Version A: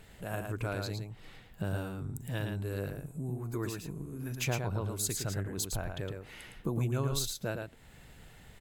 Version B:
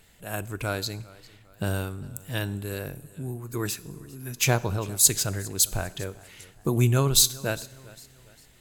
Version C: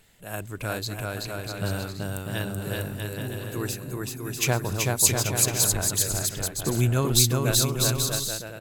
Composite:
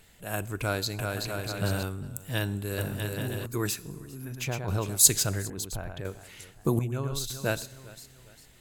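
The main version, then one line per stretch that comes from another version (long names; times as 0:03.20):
B
0:00.99–0:01.83: punch in from C
0:02.78–0:03.46: punch in from C
0:04.25–0:04.68: punch in from A
0:05.50–0:06.05: punch in from A
0:06.79–0:07.30: punch in from A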